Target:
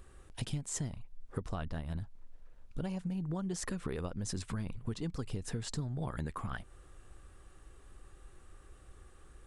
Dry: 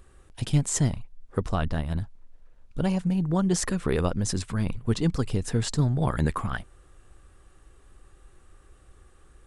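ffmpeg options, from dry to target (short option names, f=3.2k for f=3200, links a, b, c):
-af "acompressor=threshold=-32dB:ratio=12,volume=-1.5dB"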